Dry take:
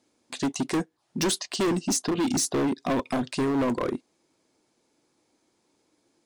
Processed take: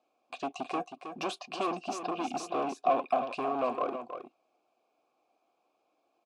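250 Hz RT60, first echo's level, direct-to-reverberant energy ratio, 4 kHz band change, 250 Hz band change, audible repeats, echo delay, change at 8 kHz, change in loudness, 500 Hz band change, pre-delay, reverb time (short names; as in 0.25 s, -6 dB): none, -9.0 dB, none, -11.5 dB, -13.0 dB, 1, 0.318 s, -19.5 dB, -6.5 dB, -3.5 dB, none, none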